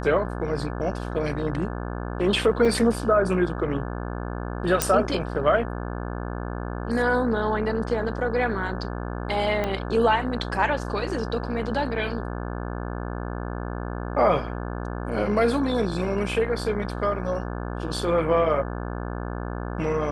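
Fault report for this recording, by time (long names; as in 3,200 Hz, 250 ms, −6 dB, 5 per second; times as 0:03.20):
mains buzz 60 Hz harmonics 29 −31 dBFS
0:02.65: drop-out 4 ms
0:04.82: click −3 dBFS
0:09.64: click −13 dBFS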